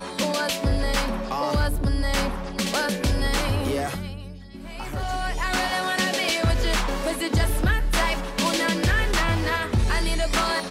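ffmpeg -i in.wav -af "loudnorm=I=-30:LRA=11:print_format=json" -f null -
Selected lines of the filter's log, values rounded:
"input_i" : "-24.0",
"input_tp" : "-12.5",
"input_lra" : "3.2",
"input_thresh" : "-34.2",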